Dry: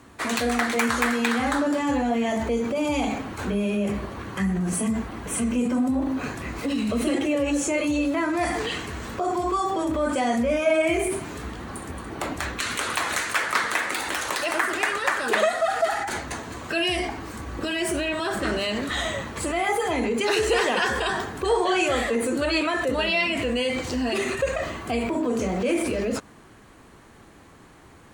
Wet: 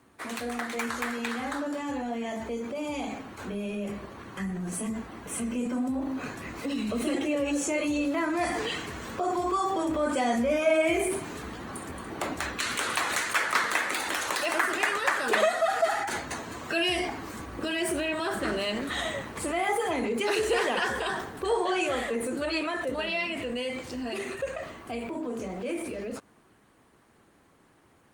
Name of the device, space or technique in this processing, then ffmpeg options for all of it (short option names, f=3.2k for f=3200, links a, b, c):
video call: -filter_complex "[0:a]asplit=3[a][b][c];[a]afade=t=out:st=19.76:d=0.02[d];[b]highpass=f=56:p=1,afade=t=in:st=19.76:d=0.02,afade=t=out:st=20.45:d=0.02[e];[c]afade=t=in:st=20.45:d=0.02[f];[d][e][f]amix=inputs=3:normalize=0,highpass=f=120:p=1,dynaudnorm=f=420:g=31:m=10dB,volume=-8.5dB" -ar 48000 -c:a libopus -b:a 32k